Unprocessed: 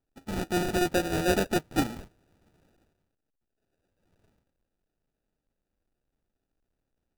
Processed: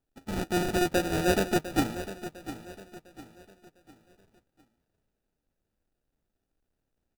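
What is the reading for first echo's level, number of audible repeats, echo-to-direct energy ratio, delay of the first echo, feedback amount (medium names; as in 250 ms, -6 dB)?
-13.0 dB, 3, -12.5 dB, 703 ms, 38%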